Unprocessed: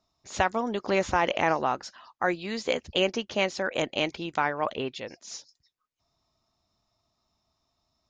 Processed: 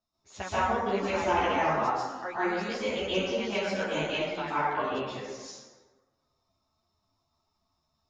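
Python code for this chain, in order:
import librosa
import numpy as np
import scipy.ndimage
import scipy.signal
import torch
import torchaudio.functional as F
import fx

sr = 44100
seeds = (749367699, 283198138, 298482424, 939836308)

y = fx.rev_plate(x, sr, seeds[0], rt60_s=1.4, hf_ratio=0.5, predelay_ms=115, drr_db=-10.0)
y = fx.ensemble(y, sr)
y = y * 10.0 ** (-8.5 / 20.0)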